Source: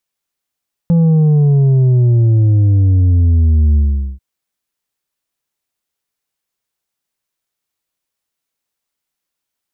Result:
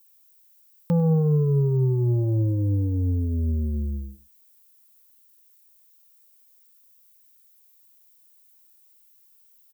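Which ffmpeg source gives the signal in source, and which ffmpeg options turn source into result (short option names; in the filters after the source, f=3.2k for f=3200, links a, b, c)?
-f lavfi -i "aevalsrc='0.398*clip((3.29-t)/0.43,0,1)*tanh(1.78*sin(2*PI*170*3.29/log(65/170)*(exp(log(65/170)*t/3.29)-1)))/tanh(1.78)':d=3.29:s=44100"
-af "asuperstop=centerf=680:order=12:qfactor=3.4,aemphasis=mode=production:type=riaa,aecho=1:1:99:0.15"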